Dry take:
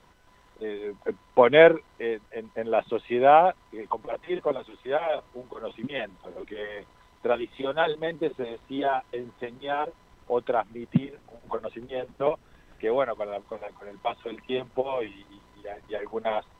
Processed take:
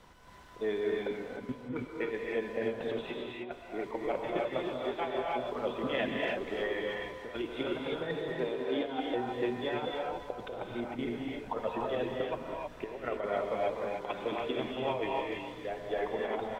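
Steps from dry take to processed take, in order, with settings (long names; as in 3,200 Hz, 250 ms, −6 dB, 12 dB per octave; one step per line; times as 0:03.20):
0:08.32–0:09.00: bass and treble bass −10 dB, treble −5 dB
compressor whose output falls as the input rises −31 dBFS, ratio −0.5
far-end echo of a speakerphone 290 ms, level −10 dB
reverb whose tail is shaped and stops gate 340 ms rising, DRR −2 dB
level −5.5 dB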